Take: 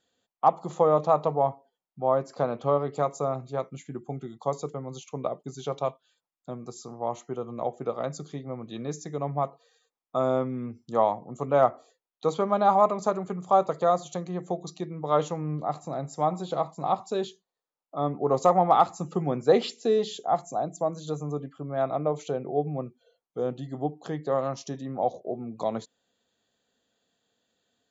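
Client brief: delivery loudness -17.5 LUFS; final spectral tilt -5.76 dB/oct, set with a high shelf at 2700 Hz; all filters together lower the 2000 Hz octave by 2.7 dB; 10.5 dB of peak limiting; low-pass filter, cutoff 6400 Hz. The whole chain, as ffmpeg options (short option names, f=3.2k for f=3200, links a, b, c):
-af "lowpass=6.4k,equalizer=f=2k:t=o:g=-7.5,highshelf=f=2.7k:g=9,volume=14.5dB,alimiter=limit=-4dB:level=0:latency=1"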